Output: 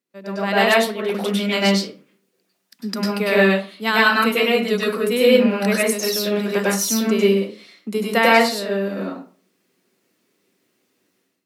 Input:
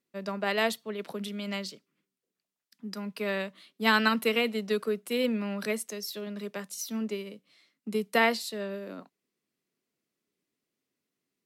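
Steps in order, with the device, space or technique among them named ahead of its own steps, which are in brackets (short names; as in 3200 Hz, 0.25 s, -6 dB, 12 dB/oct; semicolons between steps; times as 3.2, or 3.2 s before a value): far laptop microphone (reverb RT60 0.40 s, pre-delay 95 ms, DRR -5.5 dB; HPF 140 Hz; AGC gain up to 13.5 dB); gain -1 dB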